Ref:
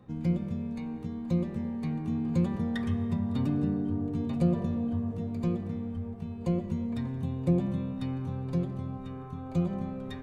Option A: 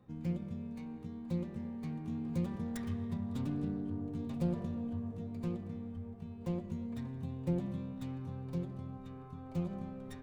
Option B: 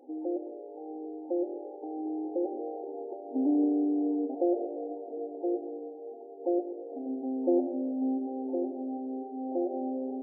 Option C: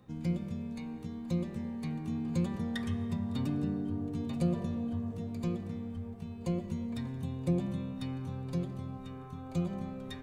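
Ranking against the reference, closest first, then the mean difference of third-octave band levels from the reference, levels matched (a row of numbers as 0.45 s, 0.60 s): A, C, B; 1.0 dB, 2.5 dB, 16.0 dB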